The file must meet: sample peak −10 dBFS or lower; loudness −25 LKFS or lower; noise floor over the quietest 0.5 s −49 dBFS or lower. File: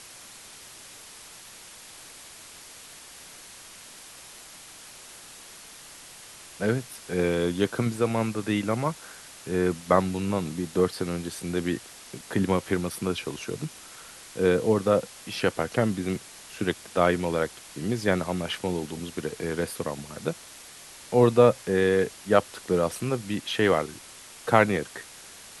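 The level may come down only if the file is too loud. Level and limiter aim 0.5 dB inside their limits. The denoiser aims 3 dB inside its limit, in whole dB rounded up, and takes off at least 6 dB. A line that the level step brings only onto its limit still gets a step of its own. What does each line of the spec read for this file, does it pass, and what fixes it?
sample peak −3.5 dBFS: out of spec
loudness −26.5 LKFS: in spec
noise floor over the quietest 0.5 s −47 dBFS: out of spec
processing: broadband denoise 6 dB, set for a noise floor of −47 dBFS
brickwall limiter −10.5 dBFS

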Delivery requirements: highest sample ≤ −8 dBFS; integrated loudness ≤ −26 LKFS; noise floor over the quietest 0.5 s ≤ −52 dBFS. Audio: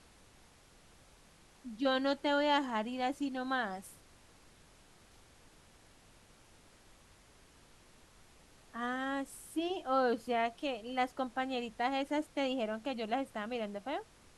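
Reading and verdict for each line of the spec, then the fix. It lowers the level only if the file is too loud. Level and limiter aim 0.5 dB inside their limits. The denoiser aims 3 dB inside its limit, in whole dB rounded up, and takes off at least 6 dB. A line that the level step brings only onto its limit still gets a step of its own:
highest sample −18.0 dBFS: in spec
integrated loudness −35.5 LKFS: in spec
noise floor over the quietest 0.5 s −62 dBFS: in spec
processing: no processing needed

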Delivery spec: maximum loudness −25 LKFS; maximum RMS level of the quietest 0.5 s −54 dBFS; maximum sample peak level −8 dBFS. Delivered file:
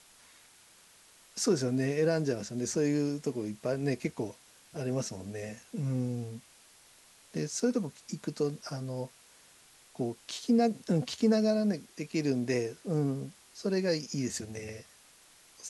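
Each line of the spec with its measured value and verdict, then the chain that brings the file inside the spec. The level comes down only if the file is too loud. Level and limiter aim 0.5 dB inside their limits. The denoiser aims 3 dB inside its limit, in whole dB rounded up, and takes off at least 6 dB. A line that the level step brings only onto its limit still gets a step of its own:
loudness −32.0 LKFS: in spec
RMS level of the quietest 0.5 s −59 dBFS: in spec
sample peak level −16.0 dBFS: in spec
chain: no processing needed

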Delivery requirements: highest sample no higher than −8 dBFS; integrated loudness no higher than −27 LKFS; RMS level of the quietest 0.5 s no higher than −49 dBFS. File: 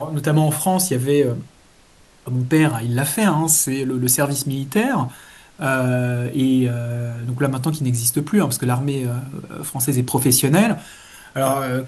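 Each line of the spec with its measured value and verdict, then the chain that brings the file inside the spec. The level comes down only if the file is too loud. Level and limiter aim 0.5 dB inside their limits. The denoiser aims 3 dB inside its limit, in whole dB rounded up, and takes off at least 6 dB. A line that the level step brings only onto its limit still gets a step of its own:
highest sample −3.5 dBFS: out of spec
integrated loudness −19.0 LKFS: out of spec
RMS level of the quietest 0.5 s −51 dBFS: in spec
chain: level −8.5 dB

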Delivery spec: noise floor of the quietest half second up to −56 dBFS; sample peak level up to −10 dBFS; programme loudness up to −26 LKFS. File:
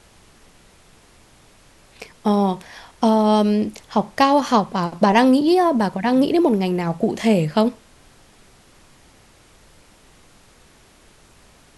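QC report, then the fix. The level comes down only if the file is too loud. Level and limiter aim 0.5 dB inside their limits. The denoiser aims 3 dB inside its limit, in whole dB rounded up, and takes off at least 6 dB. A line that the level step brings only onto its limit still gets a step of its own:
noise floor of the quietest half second −51 dBFS: out of spec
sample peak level −2.5 dBFS: out of spec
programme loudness −18.5 LKFS: out of spec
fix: level −8 dB

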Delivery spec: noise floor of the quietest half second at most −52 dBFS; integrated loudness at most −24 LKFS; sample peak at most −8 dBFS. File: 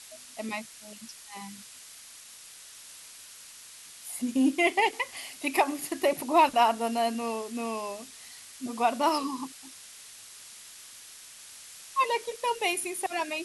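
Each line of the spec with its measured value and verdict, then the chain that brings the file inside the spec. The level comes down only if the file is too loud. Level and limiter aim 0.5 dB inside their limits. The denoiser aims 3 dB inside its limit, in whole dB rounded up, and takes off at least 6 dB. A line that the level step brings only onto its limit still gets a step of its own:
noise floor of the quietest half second −49 dBFS: out of spec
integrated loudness −28.0 LKFS: in spec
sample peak −12.0 dBFS: in spec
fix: broadband denoise 6 dB, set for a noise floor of −49 dBFS

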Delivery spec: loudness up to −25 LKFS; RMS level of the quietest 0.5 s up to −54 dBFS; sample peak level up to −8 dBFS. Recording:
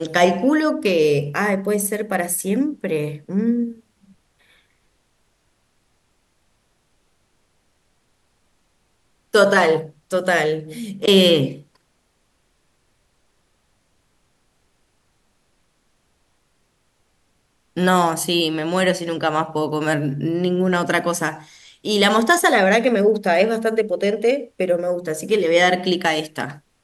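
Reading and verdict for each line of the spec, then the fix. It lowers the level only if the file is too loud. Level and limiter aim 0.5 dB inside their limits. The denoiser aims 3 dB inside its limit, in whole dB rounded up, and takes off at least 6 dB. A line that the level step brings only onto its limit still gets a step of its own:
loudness −19.0 LKFS: out of spec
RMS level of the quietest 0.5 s −65 dBFS: in spec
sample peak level −3.5 dBFS: out of spec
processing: level −6.5 dB

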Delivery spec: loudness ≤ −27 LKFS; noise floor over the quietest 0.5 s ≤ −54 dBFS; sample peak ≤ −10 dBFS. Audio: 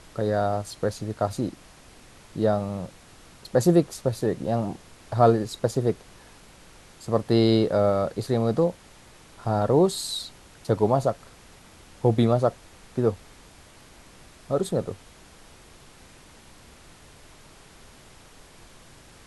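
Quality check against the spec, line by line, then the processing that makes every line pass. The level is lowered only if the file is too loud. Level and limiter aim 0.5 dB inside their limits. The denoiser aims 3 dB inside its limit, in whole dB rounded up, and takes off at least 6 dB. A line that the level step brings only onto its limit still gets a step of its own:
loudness −24.5 LKFS: out of spec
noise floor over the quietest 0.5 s −50 dBFS: out of spec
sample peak −5.5 dBFS: out of spec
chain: broadband denoise 6 dB, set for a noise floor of −50 dBFS
level −3 dB
brickwall limiter −10.5 dBFS

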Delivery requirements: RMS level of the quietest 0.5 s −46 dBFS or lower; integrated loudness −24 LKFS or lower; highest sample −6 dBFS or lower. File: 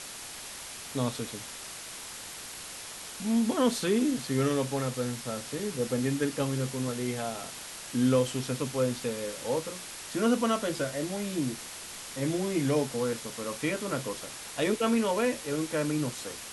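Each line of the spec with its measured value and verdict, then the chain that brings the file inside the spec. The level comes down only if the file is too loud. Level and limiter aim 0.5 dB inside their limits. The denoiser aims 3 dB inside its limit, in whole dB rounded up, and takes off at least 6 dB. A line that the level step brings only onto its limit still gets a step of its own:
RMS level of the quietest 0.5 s −42 dBFS: out of spec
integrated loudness −31.0 LKFS: in spec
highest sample −13.5 dBFS: in spec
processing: broadband denoise 7 dB, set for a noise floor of −42 dBFS

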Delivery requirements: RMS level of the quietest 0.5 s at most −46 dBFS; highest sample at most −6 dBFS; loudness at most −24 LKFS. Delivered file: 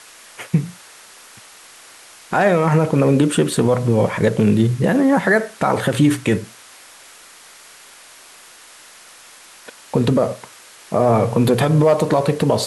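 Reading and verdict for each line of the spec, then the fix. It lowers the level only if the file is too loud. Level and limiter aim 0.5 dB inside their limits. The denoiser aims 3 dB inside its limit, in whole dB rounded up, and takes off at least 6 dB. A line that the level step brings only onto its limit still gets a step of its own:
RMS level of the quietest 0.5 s −44 dBFS: out of spec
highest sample −5.0 dBFS: out of spec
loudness −17.0 LKFS: out of spec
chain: level −7.5 dB

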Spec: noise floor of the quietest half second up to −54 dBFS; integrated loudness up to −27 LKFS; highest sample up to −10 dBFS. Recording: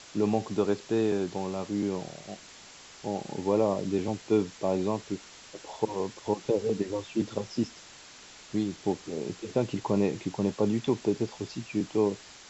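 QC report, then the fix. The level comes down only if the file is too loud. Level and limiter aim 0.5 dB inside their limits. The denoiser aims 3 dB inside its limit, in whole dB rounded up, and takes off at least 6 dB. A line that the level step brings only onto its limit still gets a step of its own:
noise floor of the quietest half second −50 dBFS: out of spec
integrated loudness −30.5 LKFS: in spec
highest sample −12.5 dBFS: in spec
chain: broadband denoise 7 dB, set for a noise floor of −50 dBFS

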